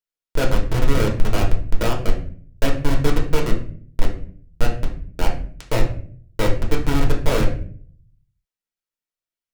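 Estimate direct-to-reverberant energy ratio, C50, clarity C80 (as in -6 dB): -1.5 dB, 8.0 dB, 12.5 dB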